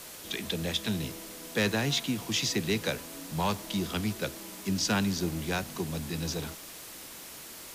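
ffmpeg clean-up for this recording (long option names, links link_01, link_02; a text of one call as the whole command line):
ffmpeg -i in.wav -af "adeclick=threshold=4,afwtdn=0.0063" out.wav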